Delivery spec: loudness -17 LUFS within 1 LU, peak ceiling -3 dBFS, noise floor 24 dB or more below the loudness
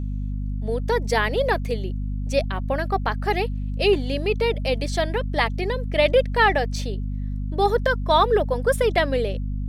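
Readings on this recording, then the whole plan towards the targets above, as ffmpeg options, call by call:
hum 50 Hz; harmonics up to 250 Hz; hum level -24 dBFS; loudness -23.0 LUFS; peak -5.0 dBFS; loudness target -17.0 LUFS
-> -af "bandreject=f=50:t=h:w=6,bandreject=f=100:t=h:w=6,bandreject=f=150:t=h:w=6,bandreject=f=200:t=h:w=6,bandreject=f=250:t=h:w=6"
-af "volume=6dB,alimiter=limit=-3dB:level=0:latency=1"

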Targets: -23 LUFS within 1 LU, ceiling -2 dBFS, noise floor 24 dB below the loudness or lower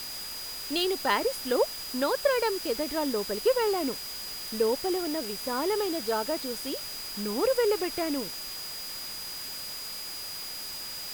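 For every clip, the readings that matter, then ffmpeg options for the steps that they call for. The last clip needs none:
steady tone 4900 Hz; tone level -38 dBFS; noise floor -38 dBFS; noise floor target -54 dBFS; loudness -29.5 LUFS; peak -11.0 dBFS; loudness target -23.0 LUFS
-> -af "bandreject=f=4.9k:w=30"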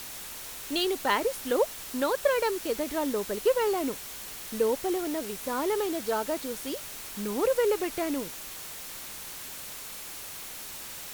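steady tone none; noise floor -41 dBFS; noise floor target -54 dBFS
-> -af "afftdn=nr=13:nf=-41"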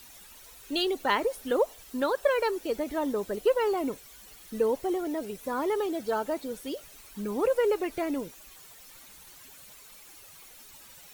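noise floor -51 dBFS; noise floor target -54 dBFS
-> -af "afftdn=nr=6:nf=-51"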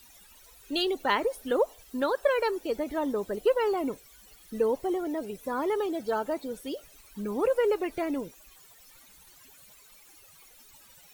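noise floor -56 dBFS; loudness -29.5 LUFS; peak -11.5 dBFS; loudness target -23.0 LUFS
-> -af "volume=6.5dB"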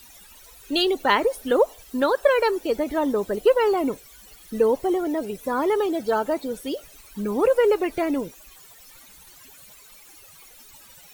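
loudness -23.0 LUFS; peak -5.0 dBFS; noise floor -49 dBFS

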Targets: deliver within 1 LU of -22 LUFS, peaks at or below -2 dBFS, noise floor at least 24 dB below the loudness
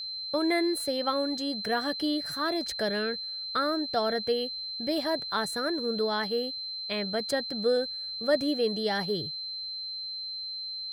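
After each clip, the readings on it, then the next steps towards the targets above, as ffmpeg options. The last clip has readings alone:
steady tone 4100 Hz; tone level -34 dBFS; loudness -29.5 LUFS; peak -13.0 dBFS; loudness target -22.0 LUFS
-> -af "bandreject=f=4.1k:w=30"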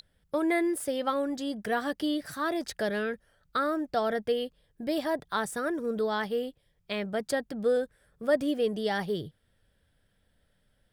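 steady tone none; loudness -30.5 LUFS; peak -13.0 dBFS; loudness target -22.0 LUFS
-> -af "volume=8.5dB"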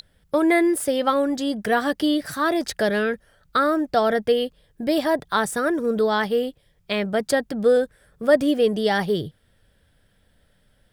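loudness -22.0 LUFS; peak -4.5 dBFS; noise floor -63 dBFS

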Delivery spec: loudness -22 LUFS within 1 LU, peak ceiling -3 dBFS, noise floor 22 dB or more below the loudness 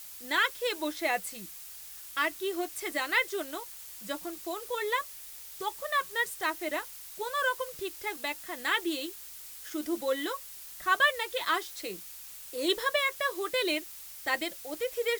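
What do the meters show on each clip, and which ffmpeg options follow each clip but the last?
noise floor -46 dBFS; noise floor target -54 dBFS; loudness -31.5 LUFS; peak -11.5 dBFS; loudness target -22.0 LUFS
-> -af "afftdn=nr=8:nf=-46"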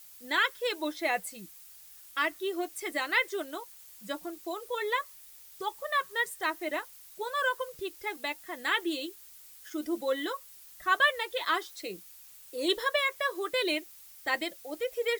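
noise floor -52 dBFS; noise floor target -54 dBFS
-> -af "afftdn=nr=6:nf=-52"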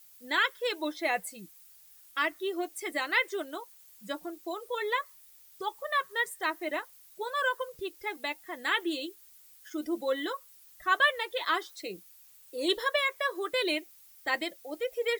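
noise floor -57 dBFS; loudness -31.5 LUFS; peak -11.5 dBFS; loudness target -22.0 LUFS
-> -af "volume=9.5dB,alimiter=limit=-3dB:level=0:latency=1"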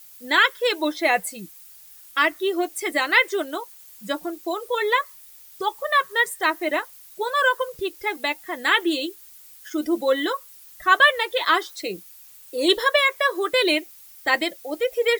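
loudness -22.0 LUFS; peak -3.0 dBFS; noise floor -47 dBFS

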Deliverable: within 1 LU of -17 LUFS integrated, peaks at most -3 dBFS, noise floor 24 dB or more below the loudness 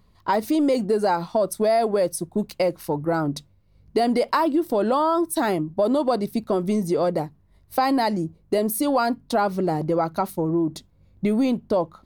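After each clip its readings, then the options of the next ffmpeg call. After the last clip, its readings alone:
loudness -23.0 LUFS; peak -10.0 dBFS; loudness target -17.0 LUFS
-> -af "volume=6dB"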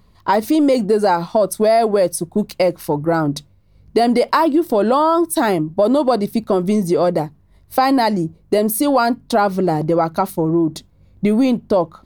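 loudness -17.0 LUFS; peak -4.0 dBFS; noise floor -52 dBFS

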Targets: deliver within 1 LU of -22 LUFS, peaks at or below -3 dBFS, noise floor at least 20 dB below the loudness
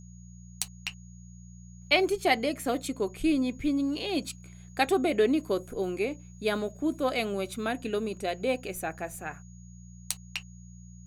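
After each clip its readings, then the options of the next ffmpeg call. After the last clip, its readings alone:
hum 60 Hz; harmonics up to 180 Hz; hum level -46 dBFS; steady tone 6700 Hz; tone level -58 dBFS; loudness -29.5 LUFS; peak -9.5 dBFS; loudness target -22.0 LUFS
-> -af "bandreject=f=60:t=h:w=4,bandreject=f=120:t=h:w=4,bandreject=f=180:t=h:w=4"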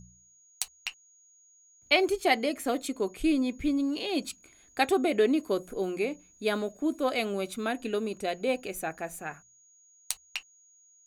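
hum none; steady tone 6700 Hz; tone level -58 dBFS
-> -af "bandreject=f=6.7k:w=30"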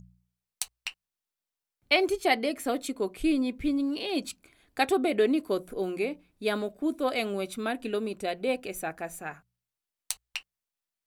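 steady tone none; loudness -29.5 LUFS; peak -9.5 dBFS; loudness target -22.0 LUFS
-> -af "volume=7.5dB,alimiter=limit=-3dB:level=0:latency=1"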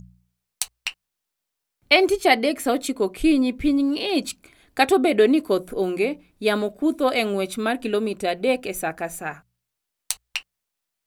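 loudness -22.5 LUFS; peak -3.0 dBFS; noise floor -82 dBFS

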